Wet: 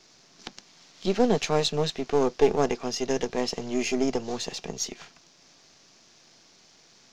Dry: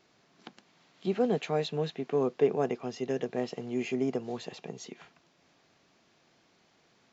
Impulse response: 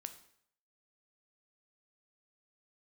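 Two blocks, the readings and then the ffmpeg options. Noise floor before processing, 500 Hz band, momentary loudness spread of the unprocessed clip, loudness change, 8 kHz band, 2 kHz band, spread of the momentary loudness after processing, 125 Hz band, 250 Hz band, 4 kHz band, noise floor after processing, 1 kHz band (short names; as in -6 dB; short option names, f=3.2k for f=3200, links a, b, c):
-67 dBFS, +4.5 dB, 16 LU, +5.0 dB, n/a, +7.0 dB, 15 LU, +3.5 dB, +4.5 dB, +12.0 dB, -58 dBFS, +7.0 dB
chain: -af "aeval=exprs='if(lt(val(0),0),0.447*val(0),val(0))':c=same,equalizer=f=5.7k:w=1.1:g=13.5,volume=7dB"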